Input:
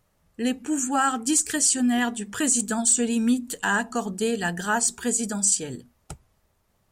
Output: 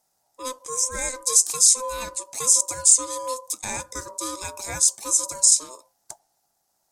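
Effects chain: ring modulator 770 Hz; resonant high shelf 3.8 kHz +12 dB, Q 1.5; trim -5.5 dB

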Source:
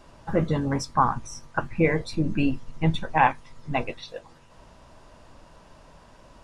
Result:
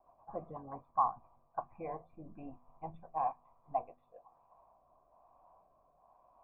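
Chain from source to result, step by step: cascade formant filter a; rotary cabinet horn 8 Hz, later 1.1 Hz, at 0.63 s; de-hum 82.79 Hz, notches 3; trim +2.5 dB

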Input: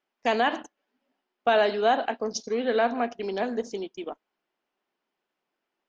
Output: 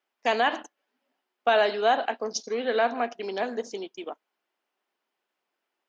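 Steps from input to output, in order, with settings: high-pass 440 Hz 6 dB/octave; trim +1.5 dB

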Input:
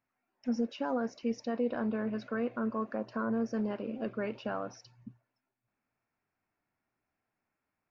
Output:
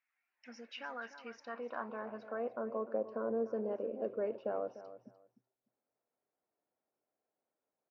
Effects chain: treble shelf 4.6 kHz +8.5 dB; feedback delay 298 ms, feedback 19%, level -14 dB; band-pass sweep 2.1 kHz -> 510 Hz, 0.83–2.91 s; trim +3.5 dB

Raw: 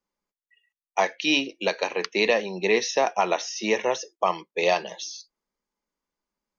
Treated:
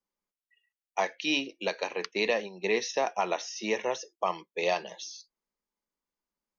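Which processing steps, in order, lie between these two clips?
2.11–2.94 s: gate -29 dBFS, range -7 dB; trim -6 dB

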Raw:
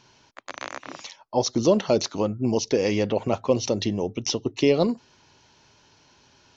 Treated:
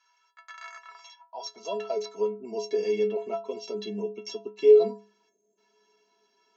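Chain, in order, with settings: high-pass sweep 1.3 kHz -> 340 Hz, 0.69–2.44 s; time-frequency box 5.29–5.58 s, 670–6300 Hz -26 dB; inharmonic resonator 200 Hz, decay 0.41 s, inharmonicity 0.03; trim +3 dB

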